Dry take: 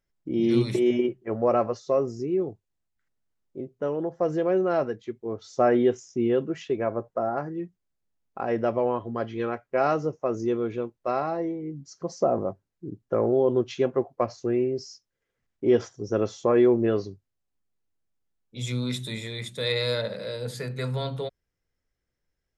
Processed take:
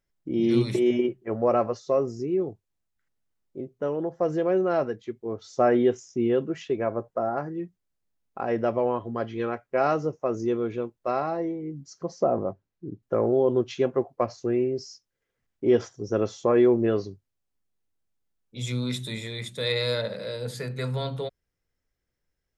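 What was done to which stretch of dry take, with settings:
12.06–13.03 s: distance through air 78 m

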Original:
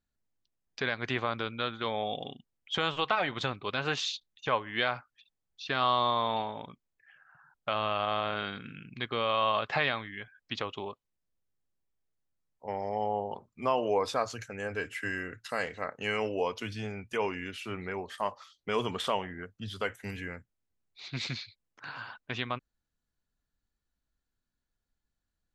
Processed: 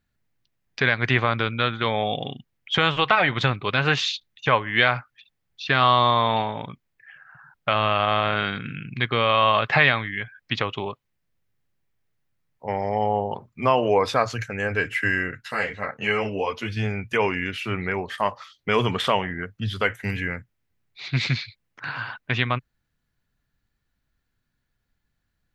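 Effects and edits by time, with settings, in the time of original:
15.31–16.77 s: three-phase chorus
whole clip: graphic EQ 125/2000/8000 Hz +8/+6/-5 dB; trim +7.5 dB

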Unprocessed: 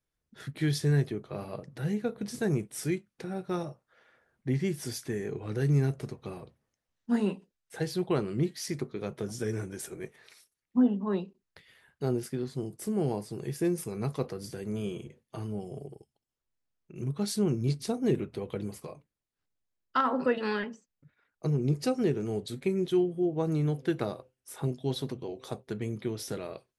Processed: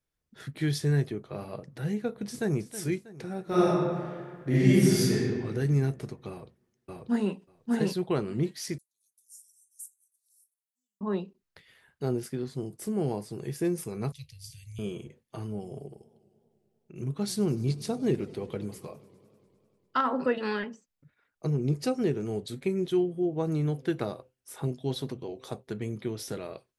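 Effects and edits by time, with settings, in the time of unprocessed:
2.26–2.68 s: echo throw 320 ms, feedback 50%, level -13.5 dB
3.43–5.11 s: reverb throw, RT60 1.8 s, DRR -10.5 dB
6.29–7.34 s: echo throw 590 ms, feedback 10%, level -0.5 dB
8.78–11.01 s: inverse Chebyshev high-pass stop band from 2 kHz, stop band 70 dB
14.12–14.79 s: inverse Chebyshev band-stop 210–1400 Hz
15.53–20.03 s: modulated delay 100 ms, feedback 78%, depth 167 cents, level -21 dB

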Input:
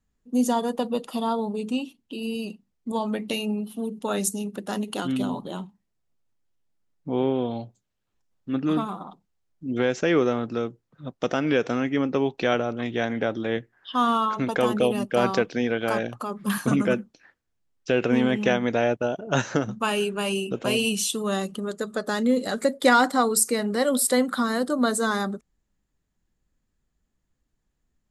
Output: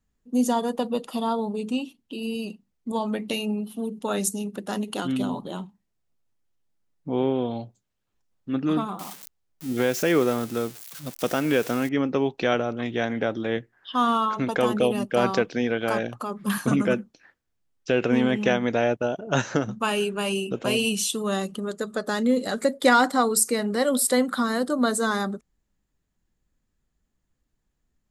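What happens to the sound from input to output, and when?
8.99–11.89 s: zero-crossing glitches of -26 dBFS

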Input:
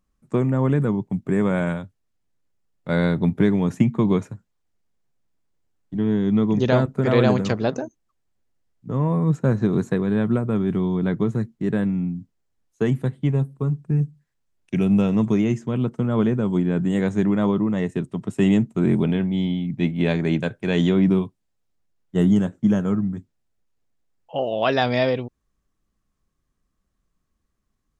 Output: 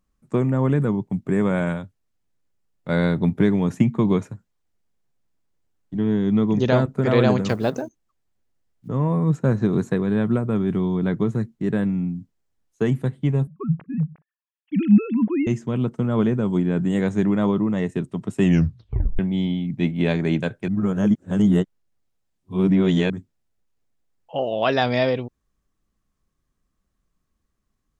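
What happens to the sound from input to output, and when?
7.49–8.89 s: block-companded coder 7-bit
13.47–15.47 s: formants replaced by sine waves
18.43 s: tape stop 0.76 s
20.68–23.10 s: reverse

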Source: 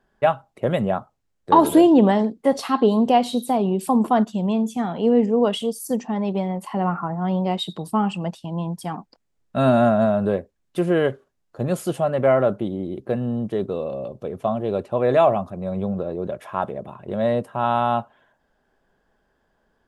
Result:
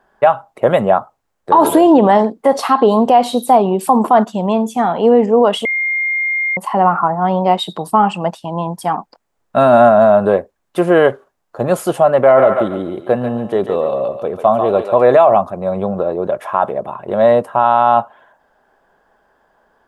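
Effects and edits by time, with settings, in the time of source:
5.65–6.57 s: bleep 2.12 kHz -23 dBFS
12.12–15.07 s: thinning echo 142 ms, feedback 38%, high-pass 880 Hz, level -4.5 dB
whole clip: peaking EQ 910 Hz +14.5 dB 2.6 oct; peak limiter -1.5 dBFS; treble shelf 6.4 kHz +9 dB

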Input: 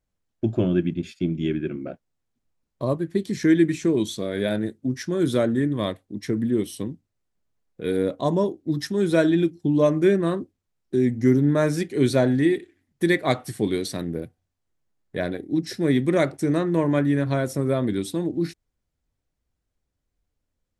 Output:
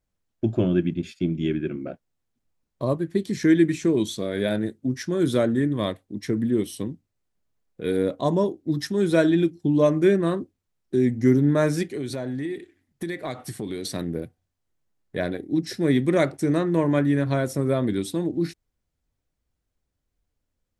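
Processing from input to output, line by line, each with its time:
11.93–13.85 s: compression 5:1, threshold -27 dBFS

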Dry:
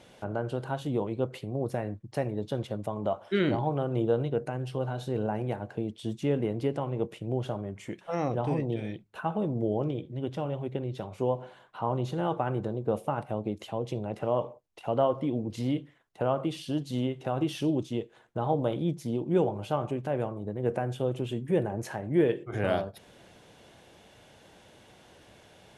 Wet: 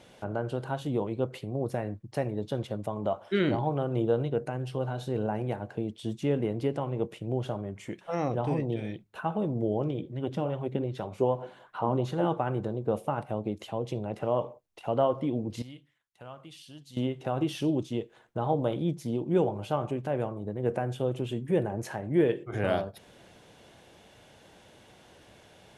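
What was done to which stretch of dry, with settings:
9.99–12.34 s: sweeping bell 2.6 Hz 210–1700 Hz +8 dB
15.62–16.97 s: amplifier tone stack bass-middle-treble 5-5-5

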